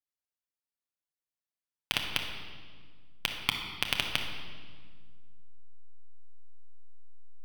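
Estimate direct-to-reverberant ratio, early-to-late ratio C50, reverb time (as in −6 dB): 2.0 dB, 4.5 dB, 1.7 s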